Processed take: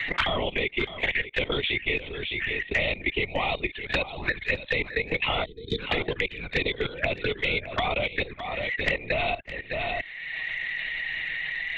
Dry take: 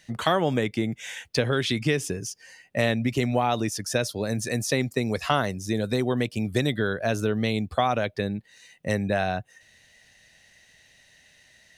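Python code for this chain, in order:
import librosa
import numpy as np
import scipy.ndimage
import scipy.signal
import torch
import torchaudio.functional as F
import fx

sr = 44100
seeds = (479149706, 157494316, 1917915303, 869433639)

y = fx.tilt_eq(x, sr, slope=1.5)
y = fx.mod_noise(y, sr, seeds[0], snr_db=35)
y = scipy.signal.sosfilt(scipy.signal.butter(4, 320.0, 'highpass', fs=sr, output='sos'), y)
y = fx.lpc_vocoder(y, sr, seeds[1], excitation='whisper', order=10)
y = fx.peak_eq(y, sr, hz=2100.0, db=14.0, octaves=0.74)
y = fx.env_flanger(y, sr, rest_ms=8.4, full_db=-22.0)
y = y + 10.0 ** (-11.0 / 20.0) * np.pad(y, (int(611 * sr / 1000.0), 0))[:len(y)]
y = fx.level_steps(y, sr, step_db=15)
y = fx.spec_box(y, sr, start_s=5.45, length_s=0.34, low_hz=490.0, high_hz=3000.0, gain_db=-24)
y = fx.band_squash(y, sr, depth_pct=100)
y = F.gain(torch.from_numpy(y), 4.5).numpy()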